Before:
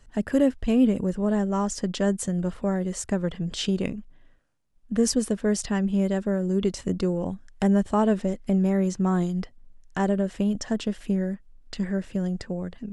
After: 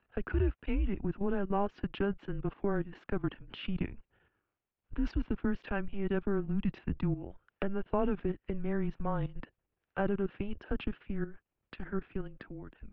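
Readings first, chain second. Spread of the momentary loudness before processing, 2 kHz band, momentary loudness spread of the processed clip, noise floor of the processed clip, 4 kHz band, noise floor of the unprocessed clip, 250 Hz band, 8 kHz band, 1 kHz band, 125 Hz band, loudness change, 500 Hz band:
9 LU, -5.0 dB, 10 LU, under -85 dBFS, -14.5 dB, -54 dBFS, -12.0 dB, under -40 dB, -7.0 dB, -8.0 dB, -10.0 dB, -9.0 dB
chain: level quantiser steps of 13 dB; mistuned SSB -200 Hz 240–3200 Hz

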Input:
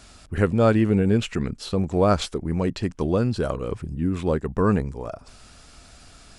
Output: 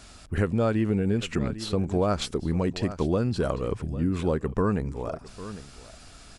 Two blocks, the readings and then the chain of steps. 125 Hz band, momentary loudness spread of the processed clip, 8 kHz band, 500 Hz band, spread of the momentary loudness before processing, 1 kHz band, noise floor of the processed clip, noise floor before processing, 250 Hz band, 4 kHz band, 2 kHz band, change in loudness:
-3.0 dB, 14 LU, -1.5 dB, -4.0 dB, 12 LU, -4.5 dB, -49 dBFS, -50 dBFS, -3.5 dB, -1.5 dB, -4.0 dB, -4.0 dB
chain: on a send: echo 0.801 s -18.5 dB; on the sum: compressor, threshold -20 dBFS, peak gain reduction 7.5 dB

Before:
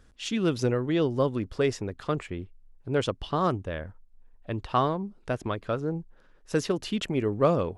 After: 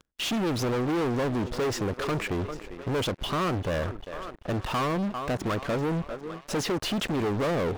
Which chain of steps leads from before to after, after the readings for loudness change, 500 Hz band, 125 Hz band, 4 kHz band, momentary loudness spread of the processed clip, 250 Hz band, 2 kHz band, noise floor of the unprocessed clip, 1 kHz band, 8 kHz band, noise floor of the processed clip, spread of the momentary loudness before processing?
-0.5 dB, -1.5 dB, 0.0 dB, +4.5 dB, 7 LU, +0.5 dB, +4.0 dB, -58 dBFS, 0.0 dB, +4.5 dB, -49 dBFS, 12 LU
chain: sample leveller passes 3; on a send: thinning echo 0.398 s, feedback 60%, high-pass 280 Hz, level -23 dB; on the sum: compressor 6:1, threshold -21 dBFS, peak gain reduction 7.5 dB; sample leveller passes 5; high shelf 3300 Hz -7 dB; reverse; upward compressor, threshold -24 dBFS; reverse; low shelf 120 Hz -6 dB; gain -9 dB

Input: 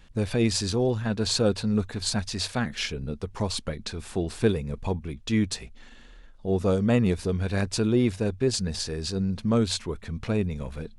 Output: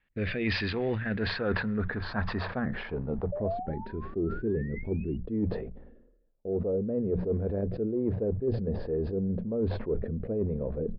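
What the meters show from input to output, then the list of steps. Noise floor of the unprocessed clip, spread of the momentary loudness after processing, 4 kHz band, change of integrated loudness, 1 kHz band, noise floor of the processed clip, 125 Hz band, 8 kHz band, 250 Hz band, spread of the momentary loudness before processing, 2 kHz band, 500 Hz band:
-49 dBFS, 4 LU, -11.5 dB, -4.5 dB, -3.0 dB, -60 dBFS, -4.5 dB, under -35 dB, -5.0 dB, 9 LU, 0.0 dB, -2.5 dB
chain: gate with hold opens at -34 dBFS; in parallel at -7.5 dB: short-mantissa float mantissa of 2-bit; on the sum: painted sound rise, 3.32–5.17, 570–2900 Hz -33 dBFS; bell 1800 Hz +6 dB 0.35 oct; low-pass sweep 2300 Hz -> 500 Hz, 0.79–4.24; downsampling 11025 Hz; rotary speaker horn 1.2 Hz; spectral gain 3.63–5.24, 420–1300 Hz -12 dB; low shelf 170 Hz -5 dB; reverse; compressor 12:1, threshold -26 dBFS, peak gain reduction 14.5 dB; reverse; notches 60/120/180 Hz; sustainer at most 54 dB/s

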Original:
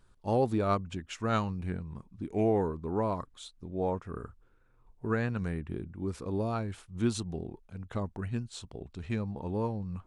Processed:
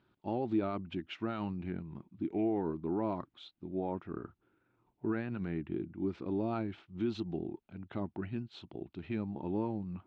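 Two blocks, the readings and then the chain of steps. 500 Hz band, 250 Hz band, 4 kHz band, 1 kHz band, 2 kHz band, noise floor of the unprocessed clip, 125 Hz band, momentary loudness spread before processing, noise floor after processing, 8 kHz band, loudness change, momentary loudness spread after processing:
-5.5 dB, -1.0 dB, -5.5 dB, -6.5 dB, -6.5 dB, -64 dBFS, -7.5 dB, 15 LU, -79 dBFS, under -20 dB, -4.0 dB, 12 LU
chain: limiter -25 dBFS, peak gain reduction 10.5 dB; speaker cabinet 150–3500 Hz, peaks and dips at 330 Hz +8 dB, 480 Hz -9 dB, 1100 Hz -6 dB, 1700 Hz -4 dB

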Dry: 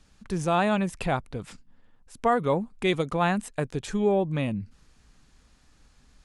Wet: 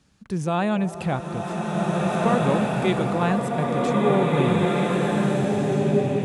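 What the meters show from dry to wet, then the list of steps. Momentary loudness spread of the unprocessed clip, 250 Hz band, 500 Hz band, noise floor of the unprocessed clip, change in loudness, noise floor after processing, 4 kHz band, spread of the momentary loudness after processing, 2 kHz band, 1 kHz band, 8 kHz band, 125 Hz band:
12 LU, +7.5 dB, +5.5 dB, -61 dBFS, +4.0 dB, -36 dBFS, +3.5 dB, 7 LU, +3.5 dB, +4.0 dB, +3.5 dB, +8.5 dB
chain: HPF 120 Hz 12 dB/oct; low shelf 220 Hz +10 dB; on a send: delay with a stepping band-pass 0.14 s, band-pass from 390 Hz, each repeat 0.7 oct, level -10.5 dB; on the sum: bloom reverb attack 1.86 s, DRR -4 dB; gain -2 dB

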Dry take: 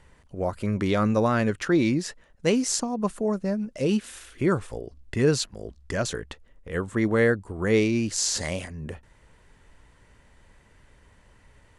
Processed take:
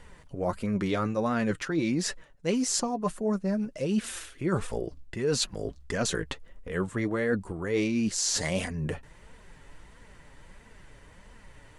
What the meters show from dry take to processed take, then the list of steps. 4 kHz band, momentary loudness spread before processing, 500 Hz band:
-1.0 dB, 16 LU, -5.0 dB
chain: flange 1.5 Hz, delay 3.9 ms, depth 3.6 ms, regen +37%; reverse; compressor 5:1, threshold -34 dBFS, peak gain reduction 14.5 dB; reverse; gain +8.5 dB

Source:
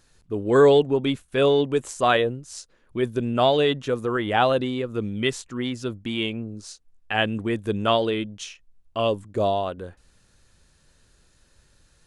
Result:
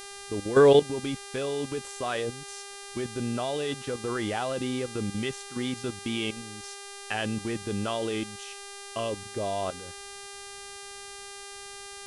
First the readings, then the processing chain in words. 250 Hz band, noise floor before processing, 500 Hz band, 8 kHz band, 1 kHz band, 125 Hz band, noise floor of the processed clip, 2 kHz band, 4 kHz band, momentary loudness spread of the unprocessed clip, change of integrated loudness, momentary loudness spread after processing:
-5.5 dB, -61 dBFS, -5.5 dB, +3.5 dB, -8.5 dB, -5.5 dB, -43 dBFS, -6.0 dB, -5.5 dB, 16 LU, -6.0 dB, 12 LU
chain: level quantiser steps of 15 dB; buzz 400 Hz, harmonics 28, -43 dBFS -2 dB/oct

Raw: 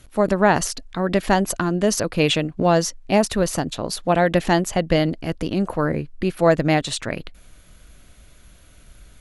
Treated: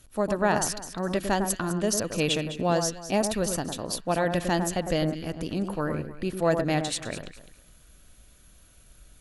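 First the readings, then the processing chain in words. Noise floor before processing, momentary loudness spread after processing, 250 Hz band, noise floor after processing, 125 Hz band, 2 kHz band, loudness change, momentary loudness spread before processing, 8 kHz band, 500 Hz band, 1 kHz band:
-49 dBFS, 7 LU, -7.0 dB, -56 dBFS, -7.0 dB, -7.0 dB, -6.5 dB, 8 LU, -2.5 dB, -7.0 dB, -7.0 dB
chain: high shelf 5900 Hz +8.5 dB; notch 2100 Hz, Q 14; echo with dull and thin repeats by turns 0.103 s, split 1700 Hz, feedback 50%, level -6.5 dB; gain -8 dB

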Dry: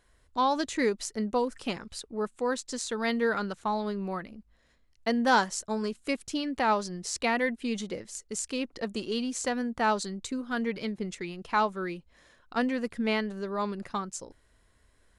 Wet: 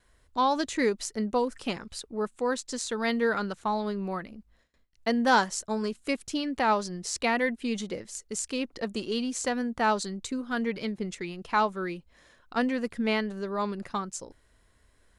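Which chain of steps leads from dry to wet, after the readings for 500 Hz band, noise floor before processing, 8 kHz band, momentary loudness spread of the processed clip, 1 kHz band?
+1.0 dB, -66 dBFS, +1.0 dB, 9 LU, +1.0 dB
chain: gate with hold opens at -56 dBFS; gain +1 dB

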